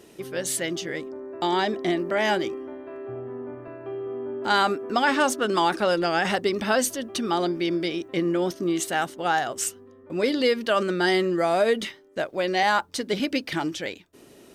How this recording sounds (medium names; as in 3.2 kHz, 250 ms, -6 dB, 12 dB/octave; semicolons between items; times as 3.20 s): noise floor -51 dBFS; spectral tilt -3.5 dB/octave